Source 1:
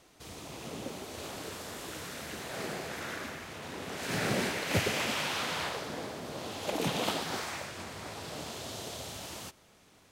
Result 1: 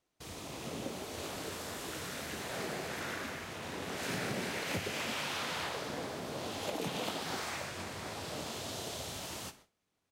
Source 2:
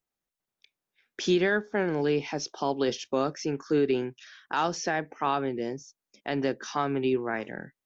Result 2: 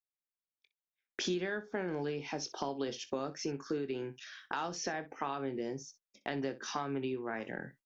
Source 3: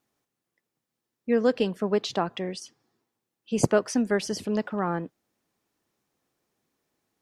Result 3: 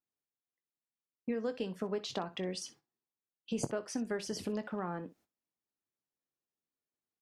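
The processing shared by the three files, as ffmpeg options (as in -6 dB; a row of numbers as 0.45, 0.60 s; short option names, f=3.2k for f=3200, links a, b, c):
-af "agate=range=-22dB:threshold=-57dB:ratio=16:detection=peak,acompressor=threshold=-34dB:ratio=5,aecho=1:1:22|62:0.237|0.15"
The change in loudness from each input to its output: -3.0, -9.5, -11.5 LU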